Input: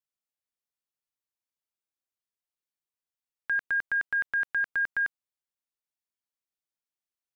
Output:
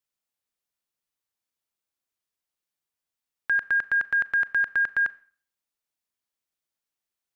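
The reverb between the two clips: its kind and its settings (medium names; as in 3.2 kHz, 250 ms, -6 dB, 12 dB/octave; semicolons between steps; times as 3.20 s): Schroeder reverb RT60 0.46 s, combs from 27 ms, DRR 18 dB; trim +4.5 dB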